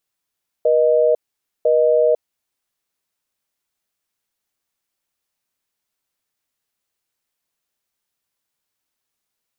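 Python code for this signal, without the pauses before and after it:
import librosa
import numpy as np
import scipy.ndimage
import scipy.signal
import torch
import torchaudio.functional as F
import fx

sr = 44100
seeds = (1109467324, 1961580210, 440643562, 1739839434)

y = fx.call_progress(sr, length_s=1.85, kind='busy tone', level_db=-14.5)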